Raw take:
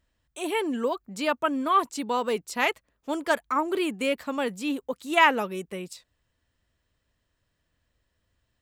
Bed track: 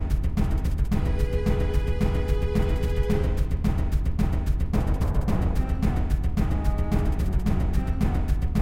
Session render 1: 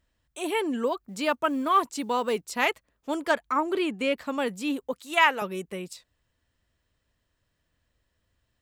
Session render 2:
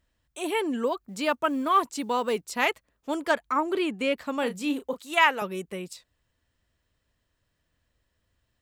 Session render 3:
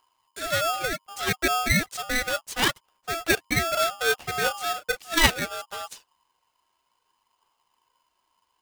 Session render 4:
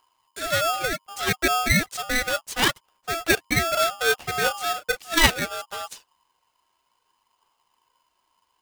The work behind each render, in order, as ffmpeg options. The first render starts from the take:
-filter_complex "[0:a]asettb=1/sr,asplit=3[a][b][c];[a]atrim=end=1.084[d];[b]atrim=start=1.08:end=2.68,asetpts=PTS-STARTPTS,afade=t=in:d=0.004:c=qsin,afade=t=out:st=1.596:d=0.004:c=qsin,acrusher=bits=9:mode=log:mix=0:aa=0.000001[e];[c]atrim=start=2.676[f];[d][e]acrossfade=d=0.004:c1=hsin:c2=qsin[g];[g][f]acrossfade=d=0.004:c1=qsin:c2=hsin,asettb=1/sr,asplit=3[h][i][j];[h]atrim=end=3.314[k];[i]atrim=start=3.31:end=4.24,asetpts=PTS-STARTPTS,afade=t=in:d=0.004:c=qsin,afade=t=out:st=0.926:d=0.004:c=qsin,acrossover=split=6600[l][m];[m]acompressor=threshold=-57dB:ratio=4:attack=1:release=60[n];[l][n]amix=inputs=2:normalize=0[o];[j]atrim=start=4.236[p];[k][o]acrossfade=d=0.004:c1=hsin:c2=qsin[q];[q][p]acrossfade=d=0.004:c1=qsin:c2=hsin,asettb=1/sr,asplit=3[r][s][t];[r]atrim=end=5.004[u];[s]atrim=start=5:end=5.42,asetpts=PTS-STARTPTS,afade=t=in:d=0.004:c=qsin,afade=t=out:st=0.416:d=0.004:c=qsin,highpass=f=750:p=1[v];[t]atrim=start=5.416[w];[u][v]acrossfade=d=0.004:c1=hsin:c2=qsin[x];[x][w]acrossfade=d=0.004:c1=qsin:c2=hsin"
-filter_complex "[0:a]asettb=1/sr,asplit=3[a][b][c];[a]atrim=end=4.394[d];[b]atrim=start=4.39:end=5.01,asetpts=PTS-STARTPTS,afade=t=in:d=0.004:c=qsin,afade=t=out:st=0.616:d=0.004:c=qsin,asplit=2[e][f];[f]adelay=34,volume=-9.5dB[g];[e][g]amix=inputs=2:normalize=0,atrim=end_sample=27342[h];[c]atrim=start=5.006[i];[d][h]acrossfade=d=0.004:c1=hsin:c2=qsin[j];[j][i]acrossfade=d=0.004:c1=qsin:c2=hsin"
-af "aphaser=in_gain=1:out_gain=1:delay=3.3:decay=0.41:speed=0.67:type=triangular,aeval=exprs='val(0)*sgn(sin(2*PI*1000*n/s))':c=same"
-af "volume=2dB,alimiter=limit=-2dB:level=0:latency=1"

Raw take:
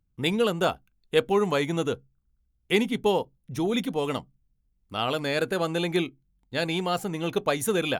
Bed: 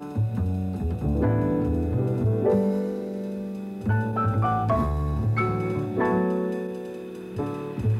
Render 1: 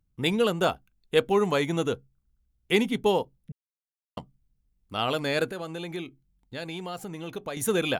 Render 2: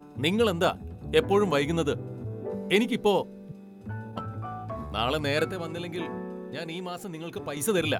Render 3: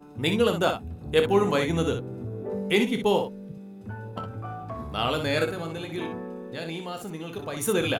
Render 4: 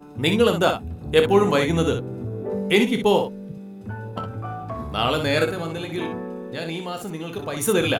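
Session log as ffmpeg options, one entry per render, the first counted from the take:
-filter_complex "[0:a]asettb=1/sr,asplit=3[a][b][c];[a]atrim=end=5.474[d];[b]atrim=start=5.47:end=7.57,asetpts=PTS-STARTPTS,afade=t=in:d=0.004:c=qsin,afade=t=out:st=2.096:d=0.004:c=qsin,acompressor=threshold=-38dB:ratio=2:attack=3.2:release=140:knee=1:detection=peak[e];[c]atrim=start=7.566[f];[d][e]acrossfade=d=0.004:c1=hsin:c2=qsin[g];[g][f]acrossfade=d=0.004:c1=qsin:c2=hsin,asplit=3[h][i][j];[h]atrim=end=3.52,asetpts=PTS-STARTPTS,afade=t=out:st=3.516:d=0.004:c=hsin[k];[i]atrim=start=3.52:end=4.17,asetpts=PTS-STARTPTS,volume=0[l];[j]atrim=start=4.17,asetpts=PTS-STARTPTS,afade=t=in:d=0.004:c=hsin[m];[k][l][m]concat=n=3:v=0:a=1"
-filter_complex "[1:a]volume=-13dB[a];[0:a][a]amix=inputs=2:normalize=0"
-af "aecho=1:1:25|61:0.299|0.422"
-af "volume=4.5dB"

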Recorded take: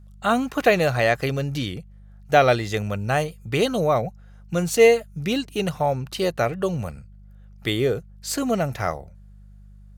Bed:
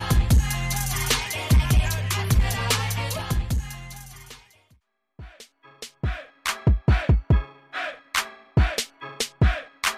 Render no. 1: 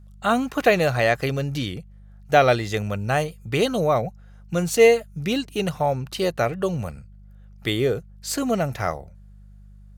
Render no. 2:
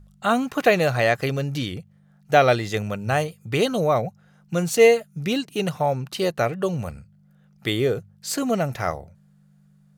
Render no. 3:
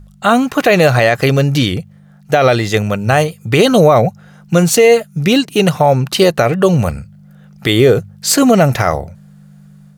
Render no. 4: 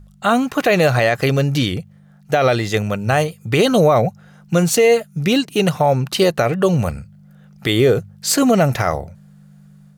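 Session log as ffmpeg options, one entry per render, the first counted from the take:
-af anull
-af "bandreject=f=50:t=h:w=4,bandreject=f=100:t=h:w=4"
-af "dynaudnorm=f=470:g=3:m=5.5dB,alimiter=level_in=10.5dB:limit=-1dB:release=50:level=0:latency=1"
-af "volume=-4.5dB"

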